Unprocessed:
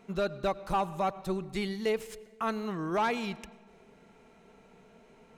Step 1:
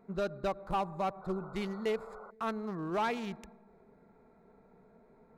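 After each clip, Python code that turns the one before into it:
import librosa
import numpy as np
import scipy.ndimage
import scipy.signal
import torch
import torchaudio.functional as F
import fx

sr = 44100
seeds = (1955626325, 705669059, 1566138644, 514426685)

y = fx.wiener(x, sr, points=15)
y = fx.spec_paint(y, sr, seeds[0], shape='noise', start_s=1.21, length_s=1.1, low_hz=370.0, high_hz=1500.0, level_db=-48.0)
y = F.gain(torch.from_numpy(y), -3.0).numpy()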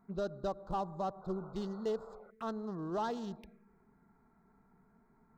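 y = fx.env_phaser(x, sr, low_hz=480.0, high_hz=2300.0, full_db=-35.5)
y = F.gain(torch.from_numpy(y), -2.0).numpy()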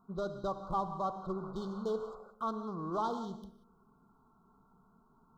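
y = scipy.signal.sosfilt(scipy.signal.cheby1(5, 1.0, [1500.0, 3100.0], 'bandstop', fs=sr, output='sos'), x)
y = fx.peak_eq(y, sr, hz=1100.0, db=9.0, octaves=0.39)
y = fx.rev_gated(y, sr, seeds[1], gate_ms=210, shape='flat', drr_db=9.0)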